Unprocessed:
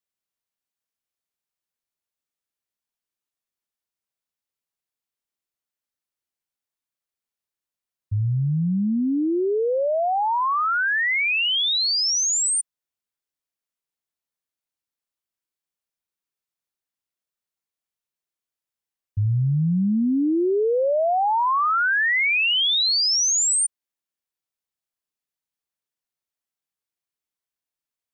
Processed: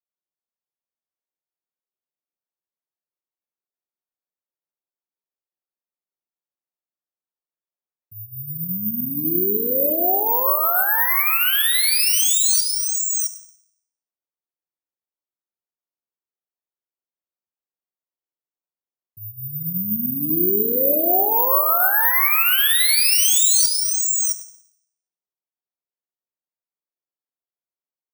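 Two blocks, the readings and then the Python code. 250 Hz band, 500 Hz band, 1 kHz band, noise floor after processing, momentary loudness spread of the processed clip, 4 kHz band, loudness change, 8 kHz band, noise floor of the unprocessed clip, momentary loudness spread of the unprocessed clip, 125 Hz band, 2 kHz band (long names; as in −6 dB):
−5.0 dB, −2.0 dB, −1.5 dB, below −85 dBFS, 12 LU, −1.0 dB, +4.0 dB, +4.5 dB, below −85 dBFS, 6 LU, −11.5 dB, −1.5 dB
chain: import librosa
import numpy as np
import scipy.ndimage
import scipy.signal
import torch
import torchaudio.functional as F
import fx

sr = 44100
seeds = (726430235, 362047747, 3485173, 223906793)

y = scipy.signal.sosfilt(scipy.signal.butter(2, 270.0, 'highpass', fs=sr, output='sos'), x)
y = fx.env_lowpass(y, sr, base_hz=980.0, full_db=-21.0)
y = fx.high_shelf(y, sr, hz=7600.0, db=5.0)
y = y + 10.0 ** (-3.5 / 20.0) * np.pad(y, (int(663 * sr / 1000.0), 0))[:len(y)]
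y = fx.room_shoebox(y, sr, seeds[0], volume_m3=1900.0, walls='mixed', distance_m=1.0)
y = (np.kron(y[::3], np.eye(3)[0]) * 3)[:len(y)]
y = y * 10.0 ** (-4.5 / 20.0)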